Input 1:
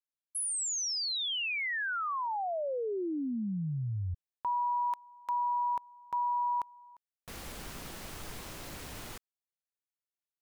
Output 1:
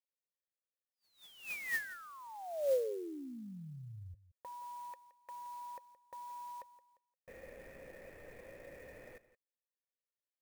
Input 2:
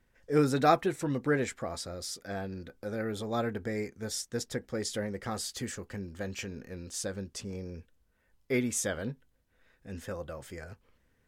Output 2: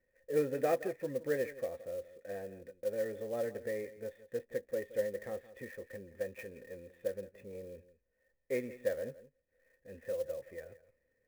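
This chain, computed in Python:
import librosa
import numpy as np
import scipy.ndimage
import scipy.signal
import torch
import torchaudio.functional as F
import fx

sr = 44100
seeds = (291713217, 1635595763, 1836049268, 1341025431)

y = fx.formant_cascade(x, sr, vowel='e')
y = y + 10.0 ** (-16.5 / 20.0) * np.pad(y, (int(171 * sr / 1000.0), 0))[:len(y)]
y = fx.clock_jitter(y, sr, seeds[0], jitter_ms=0.023)
y = y * 10.0 ** (5.5 / 20.0)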